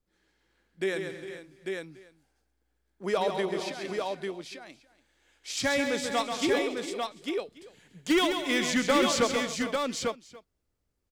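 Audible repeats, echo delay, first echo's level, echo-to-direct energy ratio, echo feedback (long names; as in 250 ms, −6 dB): 9, 135 ms, −6.5 dB, −1.5 dB, repeats not evenly spaced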